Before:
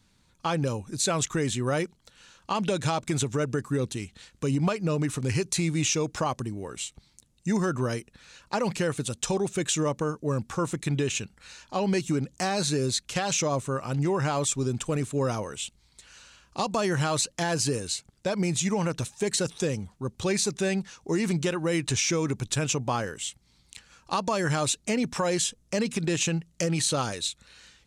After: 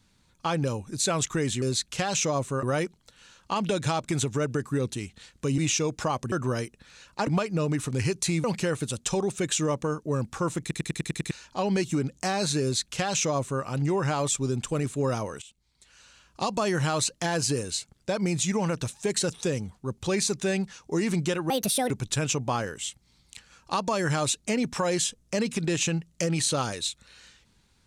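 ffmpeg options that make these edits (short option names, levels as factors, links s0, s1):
-filter_complex "[0:a]asplit=17[s0][s1][s2][s3][s4][s5][s6][s7][s8][s9][s10][s11][s12][s13][s14][s15][s16];[s0]atrim=end=1.622[s17];[s1]atrim=start=12.788:end=13.802[s18];[s2]atrim=start=1.618:end=4.572[s19];[s3]atrim=start=5.738:end=6.482[s20];[s4]atrim=start=7.658:end=8.612[s21];[s5]atrim=start=4.568:end=5.742[s22];[s6]atrim=start=8.608:end=10.882[s23];[s7]atrim=start=10.778:end=10.882[s24];[s8]atrim=start=10.778:end=10.882[s25];[s9]atrim=start=10.778:end=10.882[s26];[s10]atrim=start=10.778:end=10.882[s27];[s11]atrim=start=10.778:end=10.882[s28];[s12]atrim=start=10.778:end=10.882[s29];[s13]atrim=start=11.478:end=15.59,asetpts=PTS-STARTPTS,afade=t=out:st=4.108:d=0.004:c=hsin:silence=0.125893[s30];[s14]atrim=start=15.59:end=21.674,asetpts=PTS-STARTPTS,afade=t=in:d=1.01:silence=0.125893[s31];[s15]atrim=start=21.67:end=22.3,asetpts=PTS-STARTPTS,asetrate=69237,aresample=44100,atrim=end_sample=17696,asetpts=PTS-STARTPTS[s32];[s16]atrim=start=22.296[s33];[s17][s18]acrossfade=d=0.004:c1=hsin:c2=hsin[s34];[s34][s19]acrossfade=d=0.004:c1=hsin:c2=hsin[s35];[s35][s20]acrossfade=d=0.004:c1=hsin:c2=hsin[s36];[s36][s21]acrossfade=d=0.004:c1=hsin:c2=hsin[s37];[s37][s22]acrossfade=d=0.004:c1=hsin:c2=hsin[s38];[s38][s23]acrossfade=d=0.004:c1=hsin:c2=hsin[s39];[s39][s24]acrossfade=d=0.004:c1=hsin:c2=hsin[s40];[s40][s25]acrossfade=d=0.004:c1=hsin:c2=hsin[s41];[s41][s26]acrossfade=d=0.004:c1=hsin:c2=hsin[s42];[s42][s27]acrossfade=d=0.004:c1=hsin:c2=hsin[s43];[s43][s28]acrossfade=d=0.004:c1=hsin:c2=hsin[s44];[s44][s29]acrossfade=d=0.004:c1=hsin:c2=hsin[s45];[s30][s31]concat=n=2:v=0:a=1[s46];[s45][s46]acrossfade=d=0.004:c1=hsin:c2=hsin[s47];[s47][s32]acrossfade=d=0.004:c1=hsin:c2=hsin[s48];[s48][s33]acrossfade=d=0.004:c1=hsin:c2=hsin"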